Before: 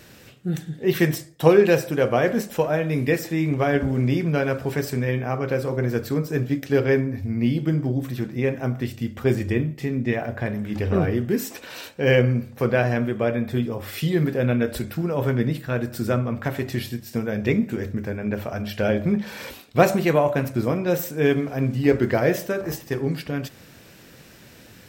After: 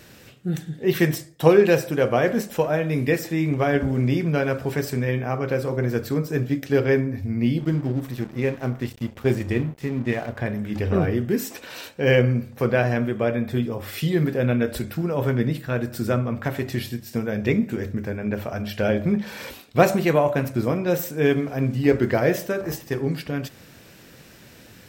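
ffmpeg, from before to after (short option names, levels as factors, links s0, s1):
-filter_complex "[0:a]asettb=1/sr,asplit=3[s0][s1][s2];[s0]atrim=end=7.604[s3];[s1]atrim=start=7.6:end=10.39,asetpts=PTS-STARTPTS,afade=t=in:d=0.004:c=qsin,afade=t=out:st=2.786:d=0.004:c=qsin,aeval=exprs='sgn(val(0))*max(abs(val(0))-0.01,0)':c=same[s4];[s2]atrim=start=10.386[s5];[s3][s4]acrossfade=d=0.004:c1=hsin:c2=qsin[s6];[s6][s5]acrossfade=d=0.004:c1=qsin:c2=hsin"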